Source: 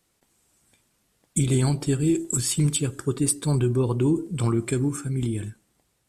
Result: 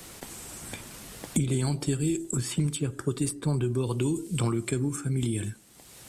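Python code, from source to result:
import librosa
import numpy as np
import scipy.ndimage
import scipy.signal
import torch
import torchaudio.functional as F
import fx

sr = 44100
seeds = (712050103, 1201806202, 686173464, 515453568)

y = fx.band_squash(x, sr, depth_pct=100)
y = y * librosa.db_to_amplitude(-5.0)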